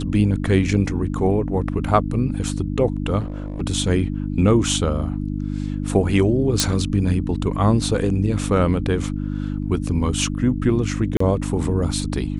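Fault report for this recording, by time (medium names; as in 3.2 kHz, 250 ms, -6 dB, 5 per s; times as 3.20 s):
hum 50 Hz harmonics 6 -25 dBFS
3.19–3.62 s: clipped -23.5 dBFS
6.60 s: pop
11.17–11.20 s: dropout 34 ms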